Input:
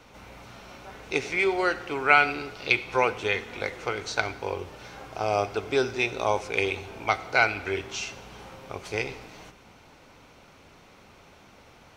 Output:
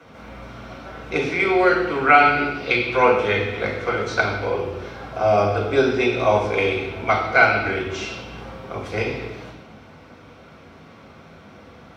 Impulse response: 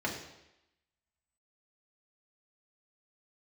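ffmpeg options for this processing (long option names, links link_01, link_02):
-filter_complex "[0:a]highpass=58[link_01];[1:a]atrim=start_sample=2205,afade=type=out:start_time=0.35:duration=0.01,atrim=end_sample=15876,asetrate=33075,aresample=44100[link_02];[link_01][link_02]afir=irnorm=-1:irlink=0,volume=-1.5dB"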